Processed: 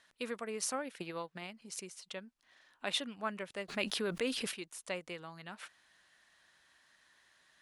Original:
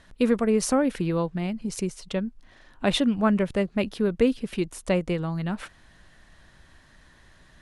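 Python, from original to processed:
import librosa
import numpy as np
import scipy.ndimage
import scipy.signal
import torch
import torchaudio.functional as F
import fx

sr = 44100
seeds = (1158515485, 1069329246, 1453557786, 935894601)

y = fx.transient(x, sr, attack_db=10, sustain_db=-5, at=(0.73, 1.52))
y = fx.highpass(y, sr, hz=1500.0, slope=6)
y = fx.env_flatten(y, sr, amount_pct=70, at=(3.68, 4.51), fade=0.02)
y = F.gain(torch.from_numpy(y), -6.5).numpy()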